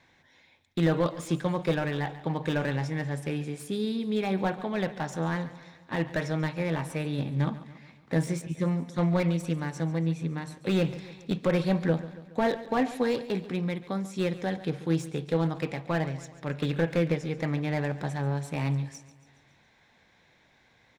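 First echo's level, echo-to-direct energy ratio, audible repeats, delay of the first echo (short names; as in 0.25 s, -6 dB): -16.0 dB, -14.5 dB, 4, 0.14 s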